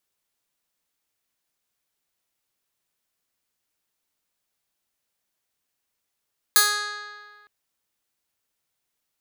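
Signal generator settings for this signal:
Karplus-Strong string G#4, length 0.91 s, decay 1.72 s, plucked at 0.15, bright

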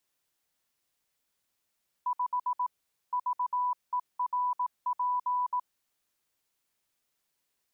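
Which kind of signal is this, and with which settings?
Morse code "5 VERP" 18 words per minute 991 Hz −26 dBFS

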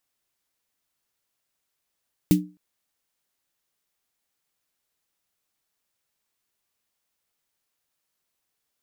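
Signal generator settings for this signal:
synth snare length 0.26 s, tones 180 Hz, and 300 Hz, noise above 2,000 Hz, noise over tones −12 dB, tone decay 0.31 s, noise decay 0.14 s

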